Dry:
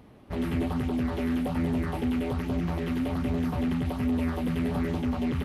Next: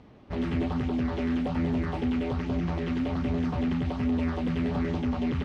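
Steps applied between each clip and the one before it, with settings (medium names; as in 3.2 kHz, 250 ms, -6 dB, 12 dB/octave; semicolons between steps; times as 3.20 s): low-pass 6.5 kHz 24 dB/octave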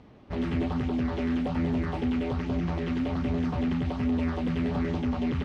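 no audible change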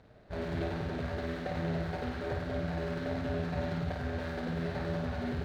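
median filter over 41 samples; fifteen-band graphic EQ 250 Hz -7 dB, 630 Hz +8 dB, 1.6 kHz +11 dB, 4 kHz +9 dB; flutter echo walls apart 9.2 m, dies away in 0.75 s; trim -6 dB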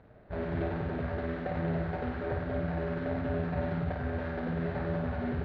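low-pass 2.2 kHz 12 dB/octave; trim +2 dB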